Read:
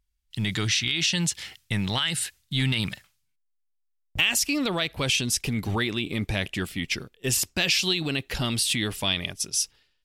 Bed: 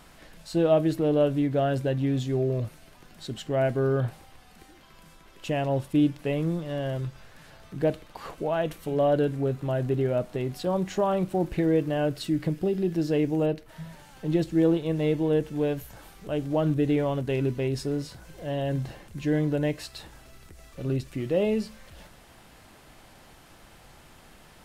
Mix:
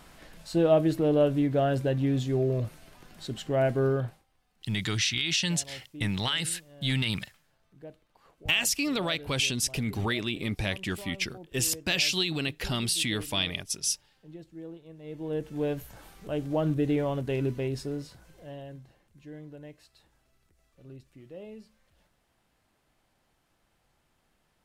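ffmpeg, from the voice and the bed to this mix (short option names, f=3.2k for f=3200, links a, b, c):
-filter_complex "[0:a]adelay=4300,volume=-3dB[a];[1:a]volume=18dB,afade=t=out:st=3.87:d=0.37:silence=0.0944061,afade=t=in:st=15.03:d=0.68:silence=0.11885,afade=t=out:st=17.51:d=1.31:silence=0.141254[b];[a][b]amix=inputs=2:normalize=0"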